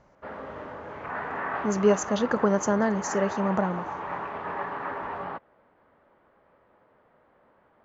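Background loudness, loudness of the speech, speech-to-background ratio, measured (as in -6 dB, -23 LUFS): -34.5 LUFS, -26.0 LUFS, 8.5 dB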